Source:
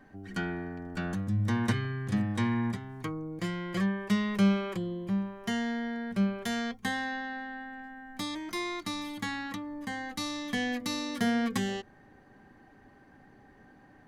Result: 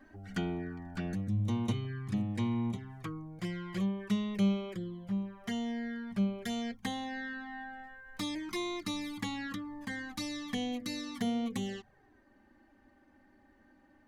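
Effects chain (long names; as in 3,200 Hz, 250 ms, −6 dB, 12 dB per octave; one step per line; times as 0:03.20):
speech leveller within 5 dB 2 s
flanger swept by the level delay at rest 3.8 ms, full sweep at −27.5 dBFS
level −3 dB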